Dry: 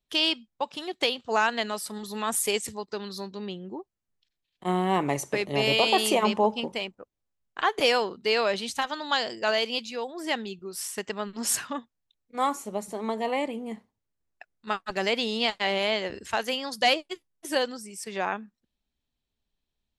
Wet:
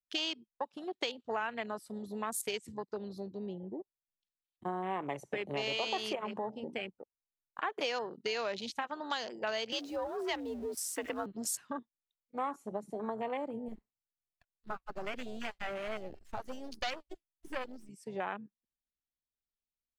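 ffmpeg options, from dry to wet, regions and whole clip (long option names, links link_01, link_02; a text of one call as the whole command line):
ffmpeg -i in.wav -filter_complex "[0:a]asettb=1/sr,asplit=3[link_01][link_02][link_03];[link_01]atrim=end=6.154[link_04];[link_02]atrim=start=6.15:end=6.74,asetpts=PTS-STARTPTS,afade=type=in:duration=0.004:curve=qsin,afade=type=out:start_time=0.586:duration=0.004:curve=qsin,bandreject=frequency=60:width_type=h:width=6,bandreject=frequency=120:width_type=h:width=6,bandreject=frequency=180:width_type=h:width=6,bandreject=frequency=240:width_type=h:width=6,bandreject=frequency=300:width_type=h:width=6,acompressor=threshold=-31dB:ratio=2:attack=3.2:release=140:knee=1:detection=peak[link_05];[link_03]atrim=start=6.736[link_06];[link_04][link_05]acrossfade=duration=0.004:curve1=hsin:curve2=qsin[link_07];[link_07][link_06]acrossfade=duration=0.004:curve1=qsin:curve2=hsin,asettb=1/sr,asplit=3[link_08][link_09][link_10];[link_08]atrim=end=9.724[link_11];[link_09]atrim=start=9.72:end=11.26,asetpts=PTS-STARTPTS,afade=type=in:duration=0.004:curve=qsin,afade=type=out:start_time=1.536:duration=0.004:curve=qsin,aeval=exprs='val(0)+0.5*0.0251*sgn(val(0))':channel_layout=same,afreqshift=61[link_12];[link_10]atrim=start=11.256[link_13];[link_11][link_12]acrossfade=duration=0.004:curve1=hsin:curve2=qsin[link_14];[link_14][link_13]acrossfade=duration=0.004:curve1=qsin:curve2=hsin,asettb=1/sr,asplit=3[link_15][link_16][link_17];[link_15]atrim=end=13.684[link_18];[link_16]atrim=start=13.68:end=17.89,asetpts=PTS-STARTPTS,afade=type=in:duration=0.004:curve=qsin,afade=type=out:start_time=4.206:duration=0.004:curve=qsin,bandreject=frequency=470:width=6.3,aeval=exprs='max(val(0),0)':channel_layout=same,acrusher=bits=7:mode=log:mix=0:aa=0.000001[link_19];[link_17]atrim=start=17.886[link_20];[link_18][link_19]acrossfade=duration=0.004:curve1=hsin:curve2=qsin[link_21];[link_21][link_20]acrossfade=duration=0.004:curve1=qsin:curve2=hsin,acrossover=split=370|3000[link_22][link_23][link_24];[link_22]acompressor=threshold=-35dB:ratio=6[link_25];[link_25][link_23][link_24]amix=inputs=3:normalize=0,afwtdn=0.02,acompressor=threshold=-30dB:ratio=3,volume=-3.5dB" out.wav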